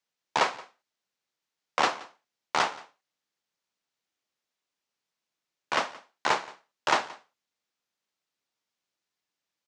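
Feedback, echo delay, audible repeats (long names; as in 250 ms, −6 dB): repeats not evenly spaced, 175 ms, 1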